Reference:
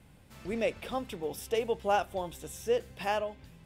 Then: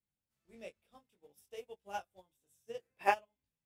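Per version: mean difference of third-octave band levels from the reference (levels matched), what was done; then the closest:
14.5 dB: high-shelf EQ 5,200 Hz +11 dB
gain on a spectral selection 0:02.82–0:03.12, 230–2,700 Hz +11 dB
chorus effect 0.6 Hz, delay 20 ms, depth 2.3 ms
expander for the loud parts 2.5 to 1, over −43 dBFS
level −2.5 dB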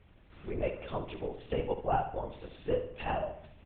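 8.5 dB: dynamic equaliser 2,800 Hz, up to +6 dB, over −54 dBFS, Q 5.1
linear-prediction vocoder at 8 kHz whisper
treble cut that deepens with the level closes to 1,400 Hz, closed at −30 dBFS
on a send: repeating echo 70 ms, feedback 45%, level −10 dB
on the sum: level −2 dB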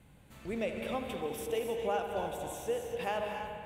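6.0 dB: parametric band 5,200 Hz −10 dB 0.24 octaves
downward compressor, threshold −28 dBFS, peak gain reduction 6 dB
bucket-brigade delay 80 ms, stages 2,048, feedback 84%, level −11 dB
reverb whose tail is shaped and stops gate 310 ms rising, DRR 5 dB
level −2 dB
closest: third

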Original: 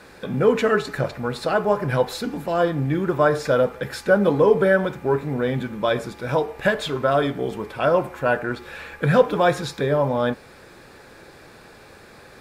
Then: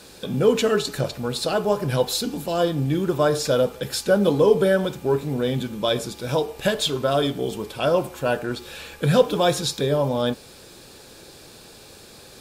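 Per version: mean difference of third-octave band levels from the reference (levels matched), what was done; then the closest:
4.5 dB: drawn EQ curve 410 Hz 0 dB, 2,000 Hz −7 dB, 3,000 Hz +6 dB, 7,400 Hz +10 dB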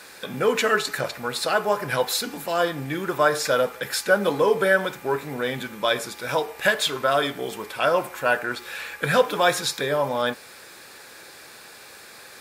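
7.0 dB: spectral tilt +3.5 dB per octave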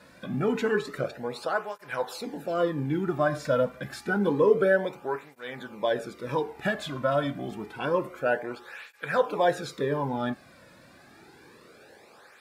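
3.0 dB: through-zero flanger with one copy inverted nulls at 0.28 Hz, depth 2.6 ms
level −4 dB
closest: third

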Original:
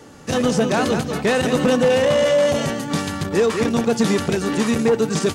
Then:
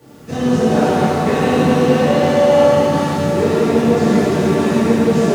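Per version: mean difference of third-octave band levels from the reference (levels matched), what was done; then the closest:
5.5 dB: bit-depth reduction 8 bits, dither triangular
high-pass filter 86 Hz
spectral tilt −2 dB per octave
reverb with rising layers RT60 3.1 s, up +7 semitones, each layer −8 dB, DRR −11 dB
level −9.5 dB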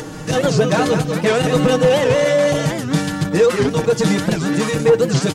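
3.0 dB: low-shelf EQ 120 Hz +7.5 dB
comb filter 6.4 ms, depth 100%
upward compression, threshold −20 dBFS
wow of a warped record 78 rpm, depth 250 cents
level −1 dB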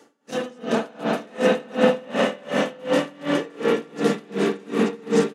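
11.0 dB: high-pass filter 200 Hz 24 dB per octave
single-tap delay 886 ms −4 dB
spring reverb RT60 3.9 s, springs 45/51 ms, chirp 65 ms, DRR −8 dB
tremolo with a sine in dB 2.7 Hz, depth 28 dB
level −7 dB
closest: second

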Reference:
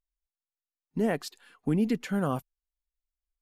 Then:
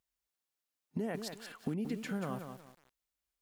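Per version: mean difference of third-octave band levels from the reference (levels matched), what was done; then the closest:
8.0 dB: high-pass filter 91 Hz 12 dB per octave
downward compressor 5 to 1, threshold −42 dBFS, peak gain reduction 18 dB
feedback echo at a low word length 182 ms, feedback 35%, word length 10 bits, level −7 dB
level +6 dB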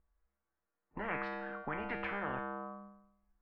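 13.0 dB: low-pass filter 1,600 Hz 24 dB per octave
tuned comb filter 67 Hz, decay 0.78 s, harmonics odd, mix 90%
every bin compressed towards the loudest bin 10 to 1
level +3 dB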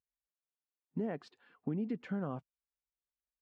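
5.0 dB: high-pass filter 87 Hz 12 dB per octave
downward compressor, threshold −29 dBFS, peak gain reduction 7.5 dB
head-to-tape spacing loss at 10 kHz 33 dB
level −2.5 dB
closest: third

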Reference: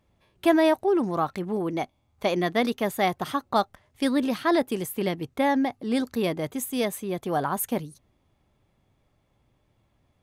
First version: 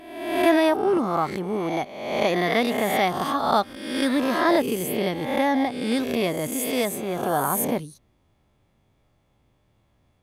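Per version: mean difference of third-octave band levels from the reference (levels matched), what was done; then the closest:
6.5 dB: peak hold with a rise ahead of every peak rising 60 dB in 0.98 s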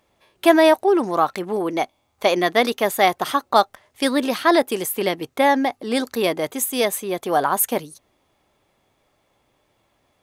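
3.5 dB: bass and treble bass −14 dB, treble +2 dB
level +8 dB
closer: second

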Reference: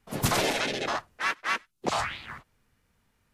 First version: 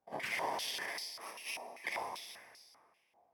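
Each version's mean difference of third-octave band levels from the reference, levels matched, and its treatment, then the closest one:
10.5 dB: samples in bit-reversed order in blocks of 32 samples
dense smooth reverb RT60 2.1 s, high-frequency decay 0.75×, DRR 3 dB
brickwall limiter −17.5 dBFS, peak gain reduction 4.5 dB
band-pass on a step sequencer 5.1 Hz 750–4,600 Hz
level +6 dB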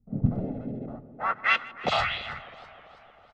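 14.0 dB: comb filter 1.5 ms, depth 62%
low-pass filter sweep 260 Hz → 3,300 Hz, 0:00.97–0:01.55
on a send: tape delay 152 ms, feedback 88%, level −18.5 dB, low-pass 2,700 Hz
on the sum: feedback echo with a swinging delay time 325 ms, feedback 48%, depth 111 cents, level −21 dB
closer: first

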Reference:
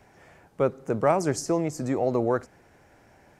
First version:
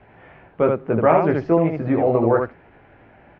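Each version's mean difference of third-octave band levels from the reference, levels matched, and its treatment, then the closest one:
5.0 dB: Butterworth low-pass 3,100 Hz 36 dB per octave
ambience of single reflections 18 ms −4 dB, 79 ms −3.5 dB
level +4.5 dB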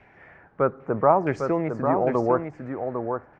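7.0 dB: auto-filter low-pass saw down 0.79 Hz 920–2,400 Hz
on a send: single-tap delay 802 ms −6 dB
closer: first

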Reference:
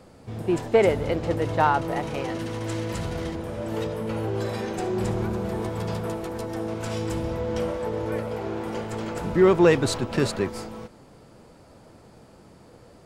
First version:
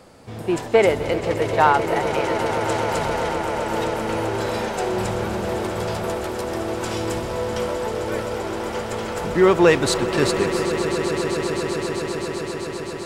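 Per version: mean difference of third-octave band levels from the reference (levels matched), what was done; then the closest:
7.0 dB: low-shelf EQ 410 Hz −7.5 dB
echo that builds up and dies away 130 ms, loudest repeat 8, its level −14 dB
level +6 dB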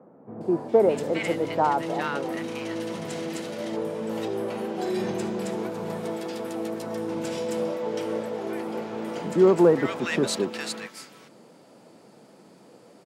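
4.0 dB: high-pass filter 170 Hz 24 dB per octave
multiband delay without the direct sound lows, highs 410 ms, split 1,300 Hz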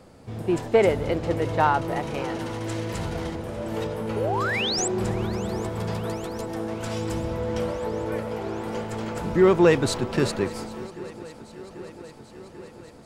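1.5 dB: sound drawn into the spectrogram rise, 0:04.16–0:04.88, 390–8,300 Hz −27 dBFS
feedback echo with a long and a short gap by turns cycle 790 ms, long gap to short 3 to 1, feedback 71%, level −21 dB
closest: third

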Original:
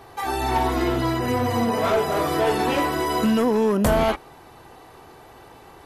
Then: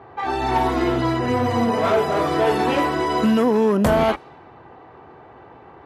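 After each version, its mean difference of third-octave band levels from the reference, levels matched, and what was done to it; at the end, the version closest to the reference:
3.0 dB: low-pass that shuts in the quiet parts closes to 1,800 Hz, open at −16.5 dBFS
high-pass filter 76 Hz
high-shelf EQ 5,400 Hz −8.5 dB
level +2.5 dB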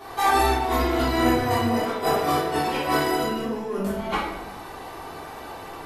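6.5 dB: low-shelf EQ 170 Hz −10 dB
compressor whose output falls as the input rises −27 dBFS, ratio −0.5
rectangular room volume 240 cubic metres, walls mixed, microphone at 3.3 metres
level −5 dB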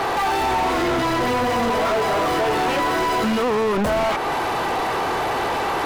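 9.0 dB: downward compressor, threshold −29 dBFS, peak gain reduction 12 dB
mid-hump overdrive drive 38 dB, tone 1,900 Hz, clips at −18.5 dBFS
level +5 dB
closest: first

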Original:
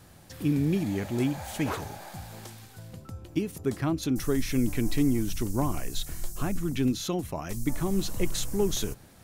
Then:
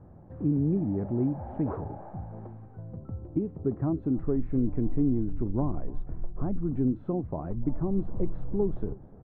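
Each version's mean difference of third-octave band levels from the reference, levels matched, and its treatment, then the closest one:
13.0 dB: Bessel low-pass filter 670 Hz, order 4
in parallel at +0.5 dB: downward compressor, threshold −33 dBFS, peak gain reduction 13 dB
on the sum: single-tap delay 298 ms −22 dB
level −2.5 dB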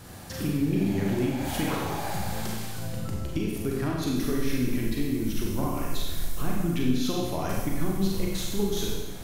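6.5 dB: dynamic equaliser 7,500 Hz, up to −6 dB, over −52 dBFS, Q 1.4
downward compressor 3 to 1, threshold −37 dBFS, peak gain reduction 13 dB
four-comb reverb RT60 1.2 s, combs from 32 ms, DRR −2.5 dB
level +6.5 dB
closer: second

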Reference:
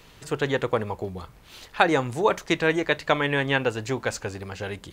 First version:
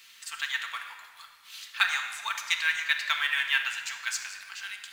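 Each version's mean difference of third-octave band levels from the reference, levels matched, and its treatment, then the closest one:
16.0 dB: Bessel high-pass filter 2,100 Hz, order 6
in parallel at −11 dB: log-companded quantiser 4 bits
on the sum: rectangular room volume 2,800 cubic metres, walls mixed, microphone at 1.6 metres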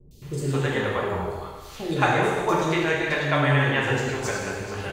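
8.5 dB: in parallel at −1.5 dB: downward compressor, threshold −30 dBFS, peak gain reduction 16 dB
on the sum: three-band delay without the direct sound lows, highs, mids 110/220 ms, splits 420/4,200 Hz
reverb whose tail is shaped and stops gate 440 ms falling, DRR −4.5 dB
level −5.5 dB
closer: second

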